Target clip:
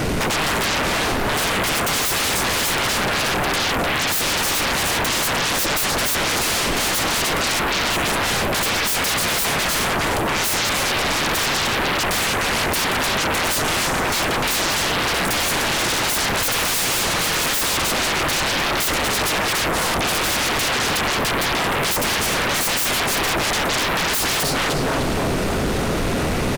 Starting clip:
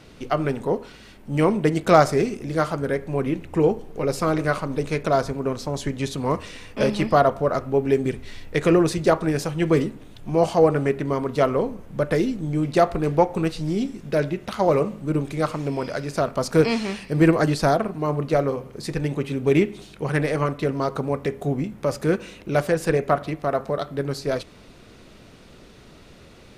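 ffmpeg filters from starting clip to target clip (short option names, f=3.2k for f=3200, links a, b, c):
-filter_complex "[0:a]acrossover=split=3100[a][b];[a]acompressor=threshold=-26dB:ratio=6[c];[b]aderivative[d];[c][d]amix=inputs=2:normalize=0,alimiter=level_in=1.5dB:limit=-24dB:level=0:latency=1:release=13,volume=-1.5dB,asplit=2[e][f];[f]adelay=302,lowpass=f=3.6k:p=1,volume=-4.5dB,asplit=2[g][h];[h]adelay=302,lowpass=f=3.6k:p=1,volume=0.44,asplit=2[i][j];[j]adelay=302,lowpass=f=3.6k:p=1,volume=0.44,asplit=2[k][l];[l]adelay=302,lowpass=f=3.6k:p=1,volume=0.44,asplit=2[m][n];[n]adelay=302,lowpass=f=3.6k:p=1,volume=0.44[o];[e][g][i][k][m][o]amix=inputs=6:normalize=0,aeval=exprs='0.0596*sin(PI/2*8.91*val(0)/0.0596)':c=same,volume=7dB"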